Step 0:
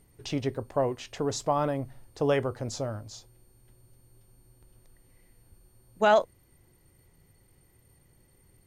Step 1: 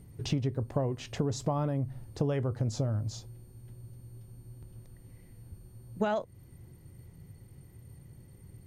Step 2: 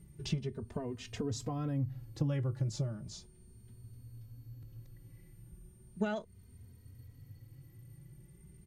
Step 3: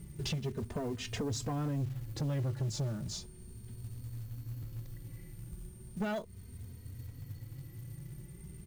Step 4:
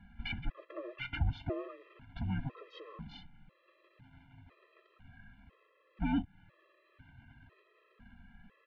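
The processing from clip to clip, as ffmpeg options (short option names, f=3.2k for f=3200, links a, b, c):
-af "equalizer=f=120:t=o:w=2.6:g=14,acompressor=threshold=-26dB:ratio=10"
-filter_complex "[0:a]equalizer=f=690:w=0.97:g=-7.5,asplit=2[a][b];[b]adelay=3,afreqshift=0.36[c];[a][c]amix=inputs=2:normalize=1"
-af "acompressor=threshold=-42dB:ratio=1.5,acrusher=bits=5:mode=log:mix=0:aa=0.000001,asoftclip=type=tanh:threshold=-37dB,volume=8dB"
-af "highpass=f=280:t=q:w=0.5412,highpass=f=280:t=q:w=1.307,lowpass=f=3.2k:t=q:w=0.5176,lowpass=f=3.2k:t=q:w=0.7071,lowpass=f=3.2k:t=q:w=1.932,afreqshift=-380,afftfilt=real='re*gt(sin(2*PI*1*pts/sr)*(1-2*mod(floor(b*sr/1024/340),2)),0)':imag='im*gt(sin(2*PI*1*pts/sr)*(1-2*mod(floor(b*sr/1024/340),2)),0)':win_size=1024:overlap=0.75,volume=7dB"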